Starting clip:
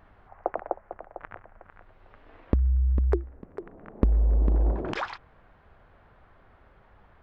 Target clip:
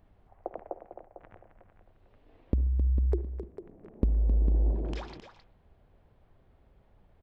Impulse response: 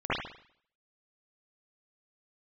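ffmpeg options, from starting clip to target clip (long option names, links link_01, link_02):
-filter_complex "[0:a]equalizer=frequency=1400:width_type=o:width=1.7:gain=-14,aecho=1:1:264:0.335,asplit=2[link_01][link_02];[1:a]atrim=start_sample=2205[link_03];[link_02][link_03]afir=irnorm=-1:irlink=0,volume=-27dB[link_04];[link_01][link_04]amix=inputs=2:normalize=0,volume=-4dB"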